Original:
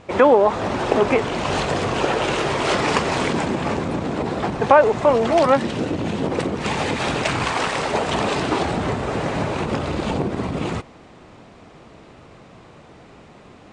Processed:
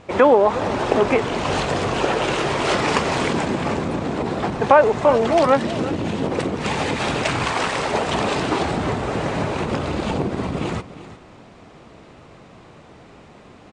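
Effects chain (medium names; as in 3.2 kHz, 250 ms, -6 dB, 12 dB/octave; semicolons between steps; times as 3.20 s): delay 354 ms -15 dB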